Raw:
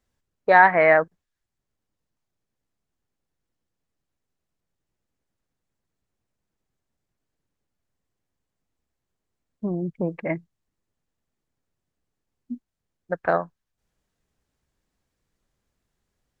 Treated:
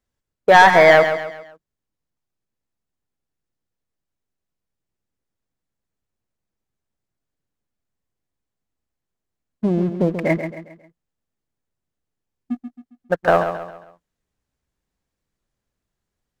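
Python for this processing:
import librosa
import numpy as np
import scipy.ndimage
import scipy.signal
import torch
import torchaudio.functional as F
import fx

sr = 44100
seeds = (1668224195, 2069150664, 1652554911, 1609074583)

p1 = fx.leveller(x, sr, passes=2)
y = p1 + fx.echo_feedback(p1, sr, ms=135, feedback_pct=40, wet_db=-9.0, dry=0)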